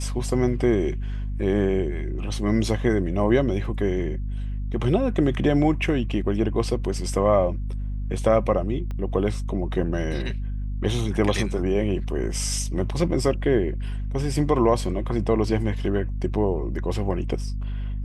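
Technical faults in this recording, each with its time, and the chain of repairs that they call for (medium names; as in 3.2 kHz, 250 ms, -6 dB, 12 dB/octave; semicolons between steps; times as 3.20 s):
hum 50 Hz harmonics 5 -28 dBFS
8.91 s: pop -22 dBFS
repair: de-click; de-hum 50 Hz, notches 5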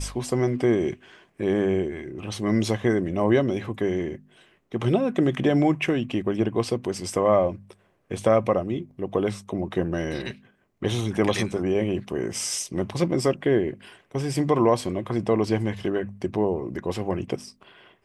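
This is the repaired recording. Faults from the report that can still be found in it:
8.91 s: pop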